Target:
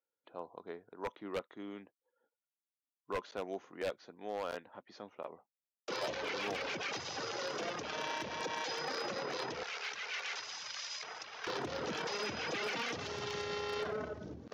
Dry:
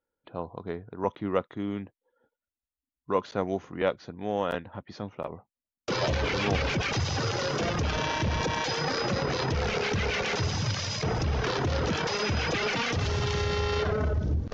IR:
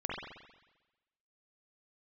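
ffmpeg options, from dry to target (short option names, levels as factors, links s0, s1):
-af "asetnsamples=n=441:p=0,asendcmd='9.63 highpass f 1100;11.47 highpass f 240',highpass=330,aeval=exprs='0.0944*(abs(mod(val(0)/0.0944+3,4)-2)-1)':c=same,volume=0.376"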